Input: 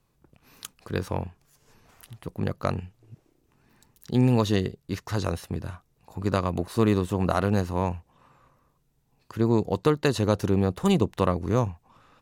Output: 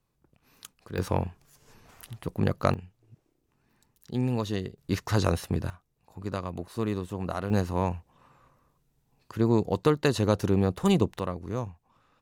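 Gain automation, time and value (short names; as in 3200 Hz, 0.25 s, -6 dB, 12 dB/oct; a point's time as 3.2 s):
-6.5 dB
from 0.98 s +2.5 dB
from 2.74 s -7 dB
from 4.78 s +3 dB
from 5.7 s -8 dB
from 7.5 s -1 dB
from 11.19 s -8.5 dB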